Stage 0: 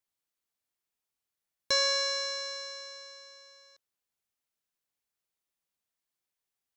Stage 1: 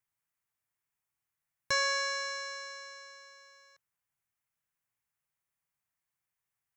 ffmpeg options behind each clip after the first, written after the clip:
-af "equalizer=f=125:t=o:w=1:g=10,equalizer=f=250:t=o:w=1:g=-5,equalizer=f=500:t=o:w=1:g=-5,equalizer=f=1000:t=o:w=1:g=3,equalizer=f=2000:t=o:w=1:g=5,equalizer=f=4000:t=o:w=1:g=-9"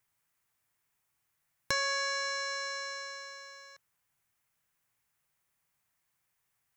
-af "acompressor=threshold=0.00794:ratio=2.5,volume=2.66"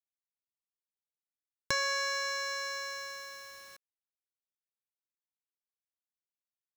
-af "acrusher=bits=8:mix=0:aa=0.000001"

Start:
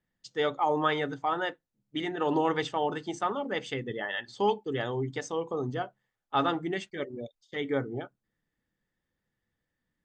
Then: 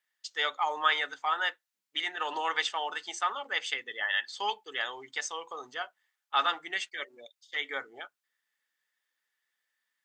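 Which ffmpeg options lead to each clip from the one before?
-af "highpass=1400,volume=2.11"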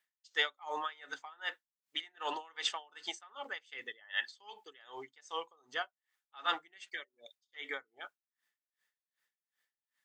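-af "aeval=exprs='val(0)*pow(10,-30*(0.5-0.5*cos(2*PI*2.6*n/s))/20)':c=same,volume=1.19"

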